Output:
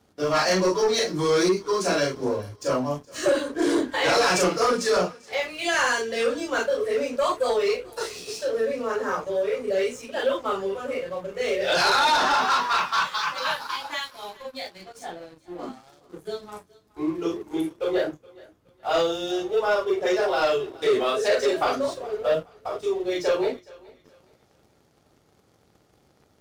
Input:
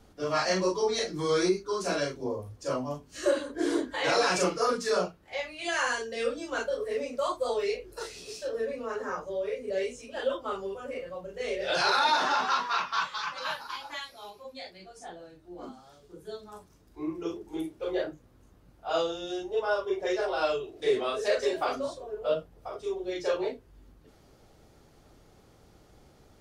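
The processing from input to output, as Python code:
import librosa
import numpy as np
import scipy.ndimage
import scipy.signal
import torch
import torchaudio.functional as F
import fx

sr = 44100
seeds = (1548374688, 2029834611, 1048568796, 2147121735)

y = scipy.signal.sosfilt(scipy.signal.butter(2, 88.0, 'highpass', fs=sr, output='sos'), x)
y = fx.leveller(y, sr, passes=2)
y = fx.echo_thinned(y, sr, ms=420, feedback_pct=34, hz=420.0, wet_db=-21.5)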